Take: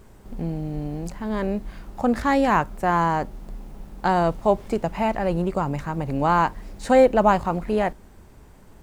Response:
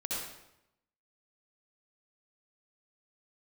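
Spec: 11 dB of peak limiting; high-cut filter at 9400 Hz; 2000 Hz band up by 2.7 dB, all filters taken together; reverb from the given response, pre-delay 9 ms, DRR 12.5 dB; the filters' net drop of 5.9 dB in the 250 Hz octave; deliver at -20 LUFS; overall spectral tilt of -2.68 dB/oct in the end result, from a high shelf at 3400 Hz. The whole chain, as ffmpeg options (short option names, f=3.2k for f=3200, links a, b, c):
-filter_complex "[0:a]lowpass=9.4k,equalizer=f=250:t=o:g=-8,equalizer=f=2k:t=o:g=5.5,highshelf=f=3.4k:g=-7,alimiter=limit=-17dB:level=0:latency=1,asplit=2[a][b];[1:a]atrim=start_sample=2205,adelay=9[c];[b][c]afir=irnorm=-1:irlink=0,volume=-16.5dB[d];[a][d]amix=inputs=2:normalize=0,volume=8.5dB"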